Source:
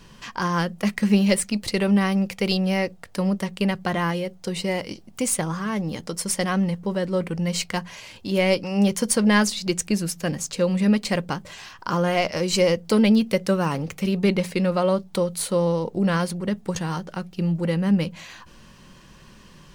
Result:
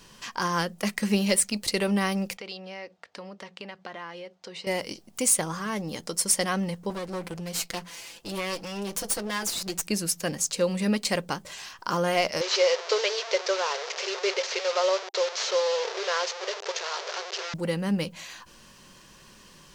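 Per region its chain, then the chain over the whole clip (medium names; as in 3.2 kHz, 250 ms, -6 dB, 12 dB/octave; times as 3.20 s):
2.37–4.67 s: high-pass 550 Hz 6 dB/octave + distance through air 160 m + compression 2.5:1, threshold -36 dBFS
6.90–9.87 s: comb filter that takes the minimum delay 5.9 ms + compression 2.5:1, threshold -27 dBFS
12.41–17.54 s: one-bit delta coder 32 kbps, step -23 dBFS + brick-wall FIR high-pass 370 Hz + band-stop 800 Hz, Q 20
whole clip: tone controls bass -7 dB, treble +6 dB; loudness maximiser +6 dB; trim -8 dB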